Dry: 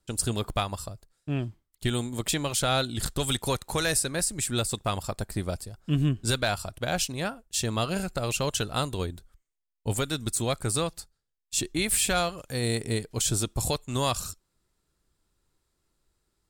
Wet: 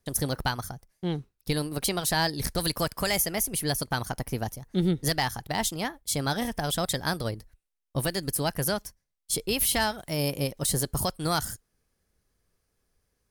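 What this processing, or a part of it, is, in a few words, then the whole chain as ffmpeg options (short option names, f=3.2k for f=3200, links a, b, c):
nightcore: -af "asetrate=54684,aresample=44100"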